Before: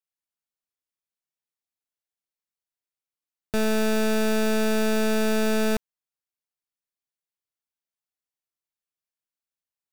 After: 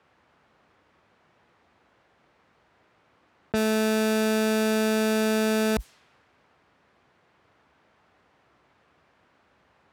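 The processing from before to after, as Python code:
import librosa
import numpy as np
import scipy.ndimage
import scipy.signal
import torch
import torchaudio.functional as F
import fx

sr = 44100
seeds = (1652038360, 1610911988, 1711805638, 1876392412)

y = scipy.signal.sosfilt(scipy.signal.butter(4, 55.0, 'highpass', fs=sr, output='sos'), x)
y = fx.env_lowpass(y, sr, base_hz=1500.0, full_db=-22.5)
y = fx.env_flatten(y, sr, amount_pct=100)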